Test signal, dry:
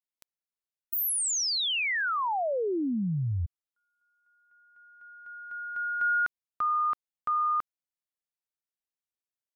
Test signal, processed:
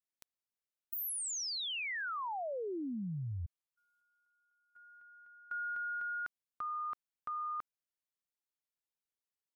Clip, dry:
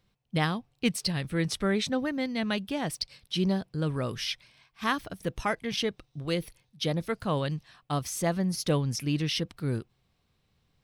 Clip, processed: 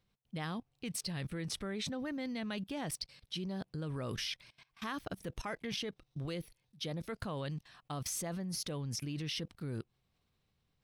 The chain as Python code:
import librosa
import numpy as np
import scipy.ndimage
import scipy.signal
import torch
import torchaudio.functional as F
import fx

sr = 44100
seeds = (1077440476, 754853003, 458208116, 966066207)

y = fx.level_steps(x, sr, step_db=20)
y = y * librosa.db_to_amplitude(1.5)